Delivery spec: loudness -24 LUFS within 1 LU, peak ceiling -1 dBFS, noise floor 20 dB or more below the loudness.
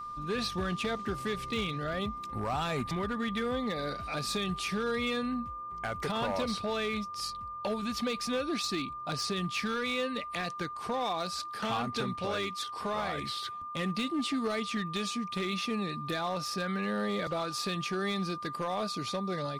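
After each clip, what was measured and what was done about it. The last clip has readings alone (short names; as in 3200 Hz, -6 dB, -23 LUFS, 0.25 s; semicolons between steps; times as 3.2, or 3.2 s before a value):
clipped 1.4%; flat tops at -26.0 dBFS; steady tone 1200 Hz; tone level -38 dBFS; loudness -33.5 LUFS; peak -26.0 dBFS; loudness target -24.0 LUFS
-> clip repair -26 dBFS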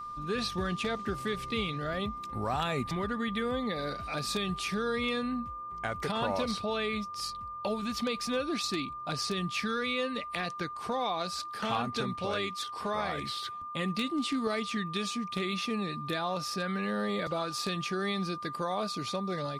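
clipped 0.0%; steady tone 1200 Hz; tone level -38 dBFS
-> notch 1200 Hz, Q 30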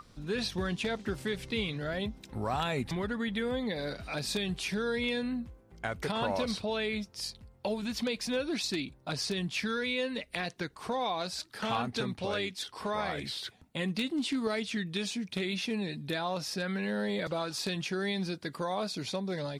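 steady tone none; loudness -33.5 LUFS; peak -16.5 dBFS; loudness target -24.0 LUFS
-> gain +9.5 dB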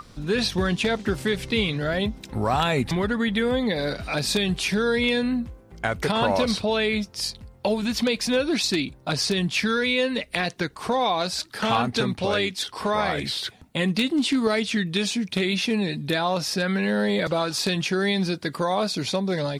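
loudness -24.0 LUFS; peak -7.0 dBFS; noise floor -50 dBFS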